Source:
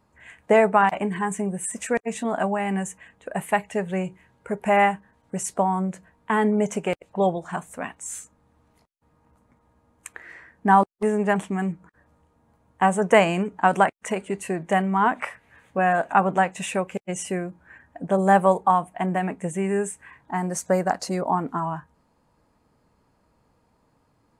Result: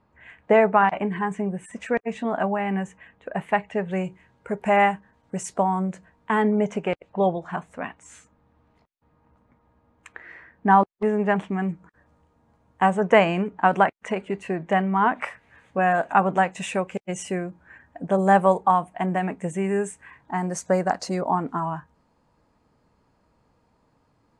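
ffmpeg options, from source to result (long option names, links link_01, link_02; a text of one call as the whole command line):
ffmpeg -i in.wav -af "asetnsamples=nb_out_samples=441:pad=0,asendcmd='3.91 lowpass f 6800;6.42 lowpass f 3600;11.69 lowpass f 7200;12.9 lowpass f 3900;15.21 lowpass f 7400',lowpass=3300" out.wav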